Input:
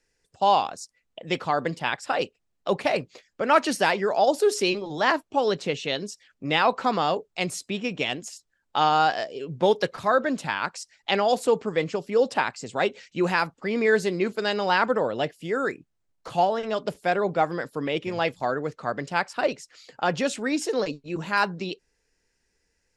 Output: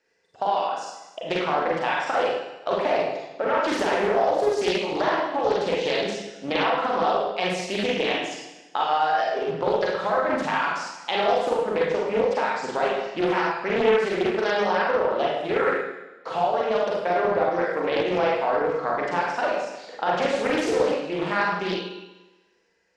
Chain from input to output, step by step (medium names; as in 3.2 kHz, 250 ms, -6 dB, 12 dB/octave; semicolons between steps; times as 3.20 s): high-pass 340 Hz 6 dB/octave; reverb removal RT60 0.64 s; low-pass 4.8 kHz 12 dB/octave; peaking EQ 640 Hz +6.5 dB 2.8 oct; peak limiter -10.5 dBFS, peak gain reduction 9 dB; compression, threshold -24 dBFS, peak gain reduction 10 dB; echo whose repeats swap between lows and highs 121 ms, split 990 Hz, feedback 53%, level -14 dB; reverberation RT60 0.90 s, pre-delay 34 ms, DRR -4.5 dB; loudspeaker Doppler distortion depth 0.45 ms